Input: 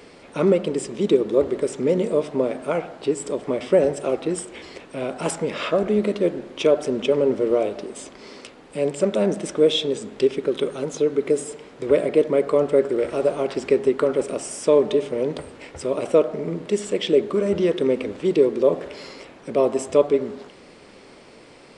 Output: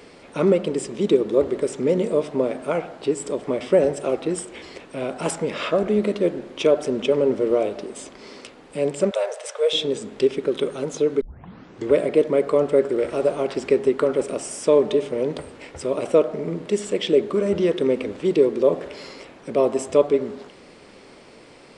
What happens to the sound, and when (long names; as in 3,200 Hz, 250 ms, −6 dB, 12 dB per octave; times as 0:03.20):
0:09.11–0:09.73: Butterworth high-pass 470 Hz 72 dB per octave
0:11.21: tape start 0.69 s